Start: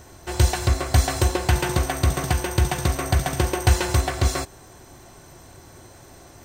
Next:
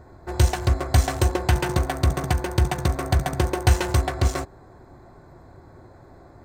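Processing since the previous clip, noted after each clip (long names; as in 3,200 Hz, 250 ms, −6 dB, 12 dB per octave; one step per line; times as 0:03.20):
adaptive Wiener filter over 15 samples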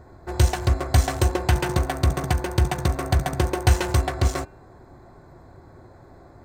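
hum removal 301.7 Hz, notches 9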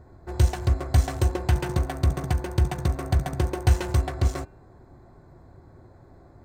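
low-shelf EQ 360 Hz +6 dB
level −7 dB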